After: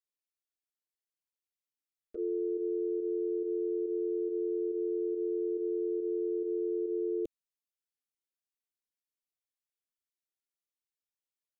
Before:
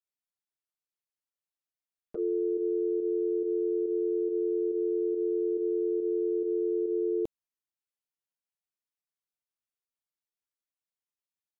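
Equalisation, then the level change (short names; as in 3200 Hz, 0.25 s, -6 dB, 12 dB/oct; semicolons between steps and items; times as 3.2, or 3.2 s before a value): fixed phaser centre 370 Hz, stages 4; -3.5 dB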